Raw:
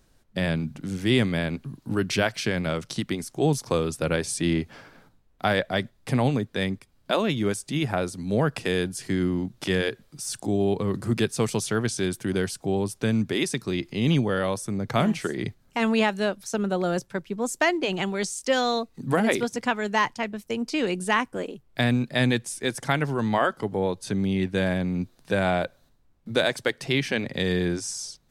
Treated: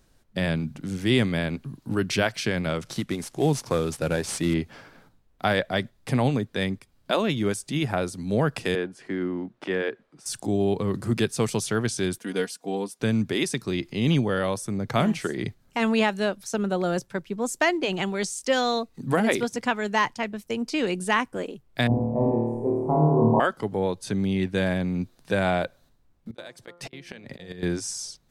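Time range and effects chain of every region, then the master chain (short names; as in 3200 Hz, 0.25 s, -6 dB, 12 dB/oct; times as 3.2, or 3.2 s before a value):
2.81–4.54 CVSD 64 kbps + upward compressor, threshold -37 dBFS
8.75–10.26 LPF 9500 Hz + three-band isolator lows -18 dB, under 220 Hz, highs -17 dB, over 2500 Hz
12.18–13 HPF 260 Hz + comb 4.2 ms, depth 68% + upward expander, over -35 dBFS
21.87–23.4 elliptic low-pass 1000 Hz + flutter echo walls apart 4.5 m, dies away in 1.4 s
26.31–27.63 flipped gate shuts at -14 dBFS, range -24 dB + de-hum 173.9 Hz, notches 8 + negative-ratio compressor -40 dBFS, ratio -0.5
whole clip: dry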